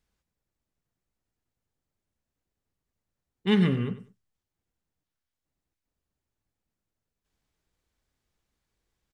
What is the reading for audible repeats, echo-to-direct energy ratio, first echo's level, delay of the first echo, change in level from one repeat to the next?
2, -14.0 dB, -14.0 dB, 96 ms, -13.5 dB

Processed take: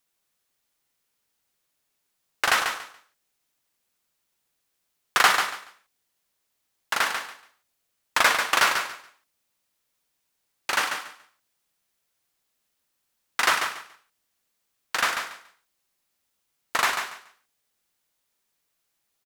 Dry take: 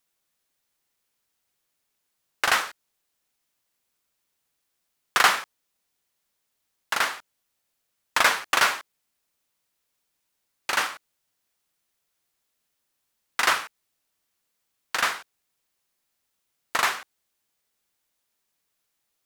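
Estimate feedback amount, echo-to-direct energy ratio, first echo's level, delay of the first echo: 21%, -7.0 dB, -7.0 dB, 0.142 s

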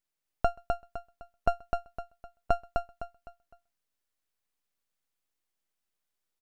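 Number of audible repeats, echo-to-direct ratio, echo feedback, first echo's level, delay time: 4, -3.5 dB, 33%, -4.0 dB, 0.255 s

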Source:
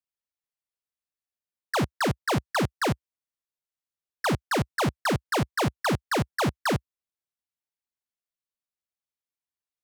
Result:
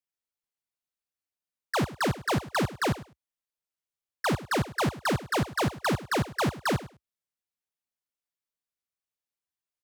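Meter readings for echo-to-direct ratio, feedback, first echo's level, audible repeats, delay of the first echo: -16.5 dB, 16%, -16.5 dB, 2, 0.103 s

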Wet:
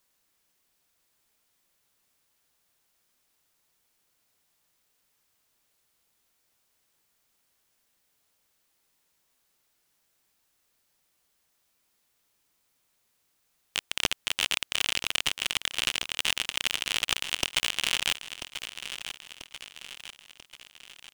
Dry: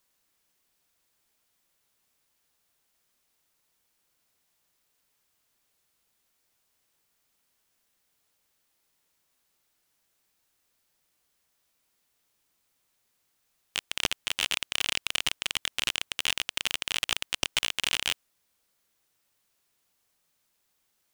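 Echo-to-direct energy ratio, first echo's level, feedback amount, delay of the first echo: -9.5 dB, -11.0 dB, 51%, 0.989 s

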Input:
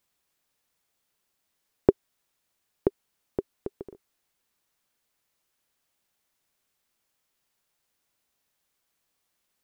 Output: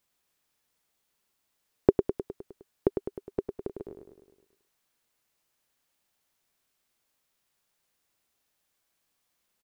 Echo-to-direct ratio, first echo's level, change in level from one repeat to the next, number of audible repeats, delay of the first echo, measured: -5.0 dB, -7.0 dB, -4.5 dB, 6, 0.103 s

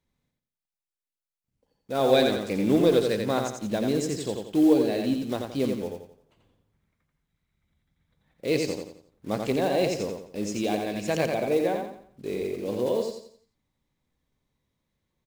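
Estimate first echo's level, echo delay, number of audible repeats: -4.5 dB, 87 ms, 4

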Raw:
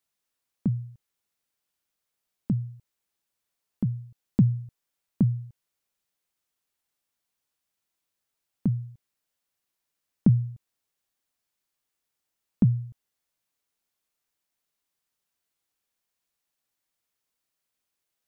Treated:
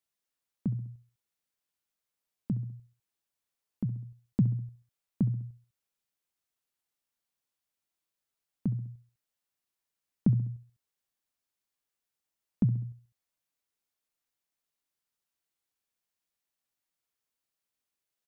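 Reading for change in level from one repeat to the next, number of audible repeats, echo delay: -6.0 dB, 3, 67 ms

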